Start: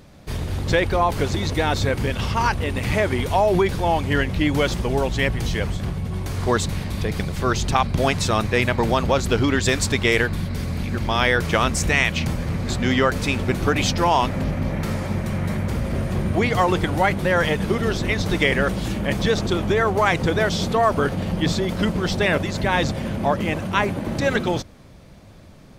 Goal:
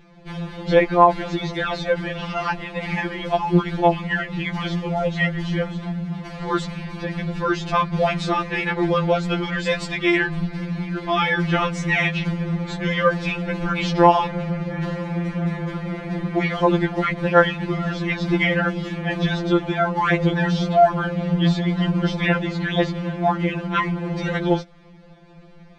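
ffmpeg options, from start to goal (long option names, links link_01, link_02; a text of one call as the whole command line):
ffmpeg -i in.wav -af "acrusher=bits=8:mode=log:mix=0:aa=0.000001,lowpass=3400,afftfilt=real='re*2.83*eq(mod(b,8),0)':imag='im*2.83*eq(mod(b,8),0)':win_size=2048:overlap=0.75,volume=2dB" out.wav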